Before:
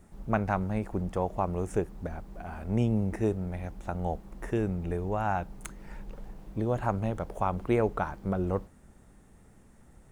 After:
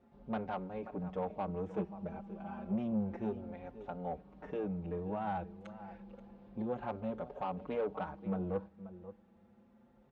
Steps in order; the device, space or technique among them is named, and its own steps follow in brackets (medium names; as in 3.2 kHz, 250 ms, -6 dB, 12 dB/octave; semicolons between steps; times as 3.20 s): peaking EQ 4.8 kHz -3 dB 0.78 oct; 1.77–2.73 s: comb 5.1 ms, depth 80%; delay 531 ms -16.5 dB; barber-pole flanger into a guitar amplifier (endless flanger 5.3 ms +0.3 Hz; saturation -27 dBFS, distortion -12 dB; cabinet simulation 84–4200 Hz, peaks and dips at 120 Hz -10 dB, 210 Hz +8 dB, 510 Hz +7 dB, 820 Hz +4 dB, 1.9 kHz -4 dB); trim -5.5 dB